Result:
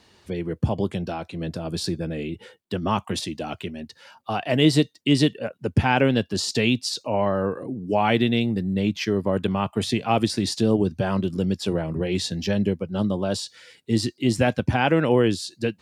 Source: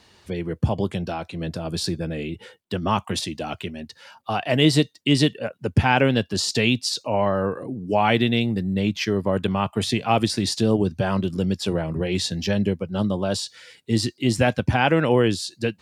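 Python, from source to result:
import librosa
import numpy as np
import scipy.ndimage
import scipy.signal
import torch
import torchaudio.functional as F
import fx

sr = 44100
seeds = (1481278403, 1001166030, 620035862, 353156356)

y = fx.peak_eq(x, sr, hz=300.0, db=3.0, octaves=1.8)
y = y * 10.0 ** (-2.5 / 20.0)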